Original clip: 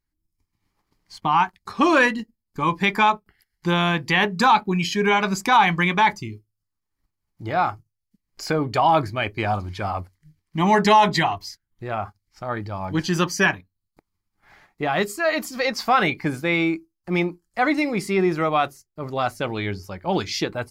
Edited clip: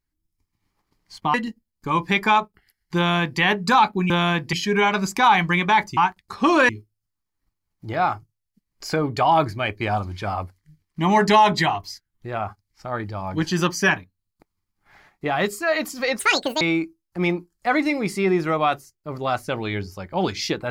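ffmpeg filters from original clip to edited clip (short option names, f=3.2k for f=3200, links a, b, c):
-filter_complex "[0:a]asplit=8[a][b][c][d][e][f][g][h];[a]atrim=end=1.342[i];[b]atrim=start=2.058:end=4.822[j];[c]atrim=start=3.688:end=4.122[k];[d]atrim=start=4.818:end=6.262[l];[e]atrim=start=1.338:end=2.062[m];[f]atrim=start=6.258:end=15.764[n];[g]atrim=start=15.76:end=16.53,asetpts=PTS-STARTPTS,asetrate=80703,aresample=44100[o];[h]atrim=start=16.526[p];[i][j]acrossfade=d=0.004:c1=hsin:c2=hsin[q];[q][k]acrossfade=d=0.004:c1=hsin:c2=hsin[r];[r][l]acrossfade=d=0.004:c1=hsin:c2=hsin[s];[s][m]acrossfade=d=0.004:c1=hsin:c2=hsin[t];[t][n]acrossfade=d=0.004:c1=hsin:c2=hsin[u];[u][o]acrossfade=d=0.004:c1=hsin:c2=hsin[v];[v][p]acrossfade=d=0.004:c1=hsin:c2=hsin"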